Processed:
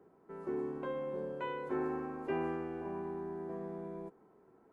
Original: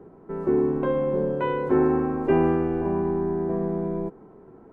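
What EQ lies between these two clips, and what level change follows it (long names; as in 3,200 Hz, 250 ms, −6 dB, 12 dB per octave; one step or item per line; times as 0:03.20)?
first difference
spectral tilt −3.5 dB per octave
+5.0 dB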